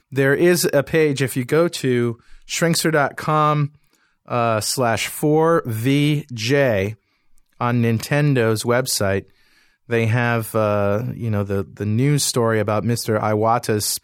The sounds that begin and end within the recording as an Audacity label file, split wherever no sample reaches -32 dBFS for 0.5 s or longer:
4.280000	6.930000	sound
7.610000	9.200000	sound